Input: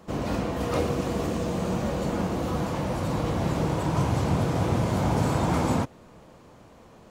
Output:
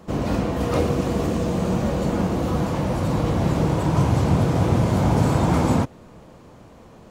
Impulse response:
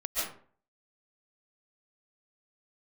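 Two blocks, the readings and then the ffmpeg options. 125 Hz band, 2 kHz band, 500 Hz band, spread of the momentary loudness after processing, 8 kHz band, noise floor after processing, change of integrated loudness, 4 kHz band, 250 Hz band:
+6.0 dB, +2.5 dB, +4.5 dB, 4 LU, +2.5 dB, −46 dBFS, +5.5 dB, +2.5 dB, +5.5 dB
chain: -af "lowshelf=frequency=440:gain=4,volume=2.5dB"

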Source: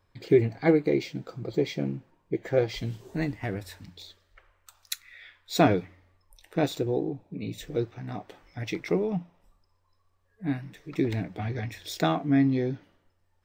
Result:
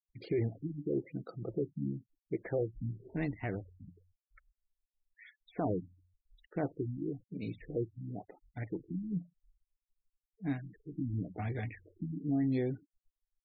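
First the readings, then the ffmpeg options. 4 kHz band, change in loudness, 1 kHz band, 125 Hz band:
below −20 dB, −9.5 dB, −13.5 dB, −6.5 dB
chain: -af "alimiter=limit=-19.5dB:level=0:latency=1:release=12,afftfilt=real='re*gte(hypot(re,im),0.00631)':imag='im*gte(hypot(re,im),0.00631)':win_size=1024:overlap=0.75,afftfilt=real='re*lt(b*sr/1024,290*pow(4900/290,0.5+0.5*sin(2*PI*0.97*pts/sr)))':imag='im*lt(b*sr/1024,290*pow(4900/290,0.5+0.5*sin(2*PI*0.97*pts/sr)))':win_size=1024:overlap=0.75,volume=-5dB"

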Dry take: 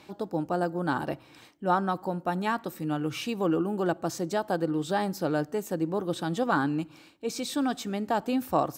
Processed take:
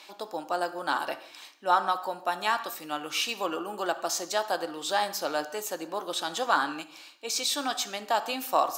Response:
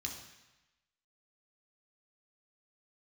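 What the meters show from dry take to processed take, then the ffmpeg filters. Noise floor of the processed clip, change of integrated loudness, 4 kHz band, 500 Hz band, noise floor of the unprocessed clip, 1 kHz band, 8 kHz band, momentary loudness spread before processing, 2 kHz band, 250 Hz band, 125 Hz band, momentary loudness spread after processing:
−51 dBFS, 0.0 dB, +9.0 dB, −2.5 dB, −54 dBFS, +2.5 dB, +8.5 dB, 6 LU, +3.5 dB, −11.0 dB, −20.5 dB, 10 LU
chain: -filter_complex "[0:a]highpass=800,asplit=2[link_01][link_02];[1:a]atrim=start_sample=2205,afade=type=out:start_time=0.24:duration=0.01,atrim=end_sample=11025,lowshelf=frequency=180:gain=-8.5[link_03];[link_02][link_03]afir=irnorm=-1:irlink=0,volume=-5dB[link_04];[link_01][link_04]amix=inputs=2:normalize=0,volume=5dB"

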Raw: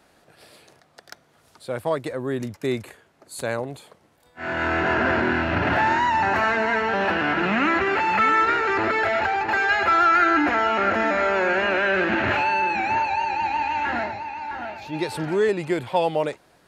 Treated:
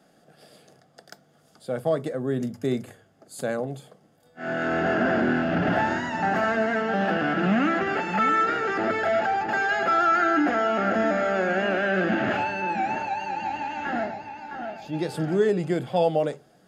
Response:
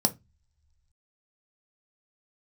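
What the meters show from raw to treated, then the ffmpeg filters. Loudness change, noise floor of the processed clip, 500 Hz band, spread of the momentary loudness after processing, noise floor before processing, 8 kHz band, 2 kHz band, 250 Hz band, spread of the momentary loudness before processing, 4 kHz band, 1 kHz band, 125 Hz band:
−3.0 dB, −60 dBFS, −0.5 dB, 10 LU, −59 dBFS, can't be measured, −5.0 dB, +1.0 dB, 11 LU, −5.0 dB, −4.0 dB, +1.0 dB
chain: -filter_complex "[0:a]asplit=2[link_01][link_02];[1:a]atrim=start_sample=2205,asetrate=37485,aresample=44100[link_03];[link_02][link_03]afir=irnorm=-1:irlink=0,volume=-9dB[link_04];[link_01][link_04]amix=inputs=2:normalize=0,volume=-8.5dB"

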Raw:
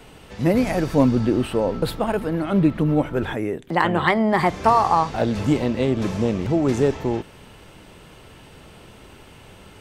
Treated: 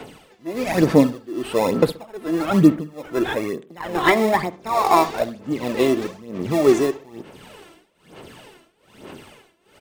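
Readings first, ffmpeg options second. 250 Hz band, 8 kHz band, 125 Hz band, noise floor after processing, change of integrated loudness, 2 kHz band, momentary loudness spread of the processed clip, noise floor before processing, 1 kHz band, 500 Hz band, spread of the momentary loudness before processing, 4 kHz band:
0.0 dB, +4.5 dB, −4.5 dB, −59 dBFS, +0.5 dB, +0.5 dB, 15 LU, −46 dBFS, −0.5 dB, +2.0 dB, 6 LU, +2.0 dB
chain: -filter_complex "[0:a]highpass=220,asplit=2[link_01][link_02];[link_02]acrusher=samples=29:mix=1:aa=0.000001,volume=-9dB[link_03];[link_01][link_03]amix=inputs=2:normalize=0,tremolo=f=1.2:d=0.94,aphaser=in_gain=1:out_gain=1:delay=3:decay=0.6:speed=1.1:type=sinusoidal,asplit=2[link_04][link_05];[link_05]adelay=64,lowpass=frequency=1600:poles=1,volume=-17dB,asplit=2[link_06][link_07];[link_07]adelay=64,lowpass=frequency=1600:poles=1,volume=0.35,asplit=2[link_08][link_09];[link_09]adelay=64,lowpass=frequency=1600:poles=1,volume=0.35[link_10];[link_04][link_06][link_08][link_10]amix=inputs=4:normalize=0,volume=2dB"

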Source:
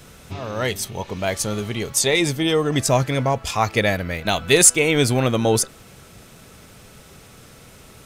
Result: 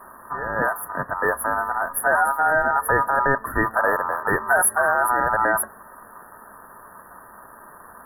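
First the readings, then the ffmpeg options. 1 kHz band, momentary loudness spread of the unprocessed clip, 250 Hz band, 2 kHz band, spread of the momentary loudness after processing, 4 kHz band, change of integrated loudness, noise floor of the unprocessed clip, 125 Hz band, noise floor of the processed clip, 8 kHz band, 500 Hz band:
+7.0 dB, 14 LU, −10.0 dB, +4.5 dB, 8 LU, below −40 dB, −1.5 dB, −46 dBFS, −14.0 dB, −46 dBFS, −9.0 dB, −3.5 dB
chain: -af "aeval=exprs='val(0)*sin(2*PI*1100*n/s)':channel_layout=same,afftfilt=real='re*(1-between(b*sr/4096,1900,10000))':imag='im*(1-between(b*sr/4096,1900,10000))':win_size=4096:overlap=0.75,alimiter=level_in=12.5dB:limit=-1dB:release=50:level=0:latency=1,volume=-7.5dB"

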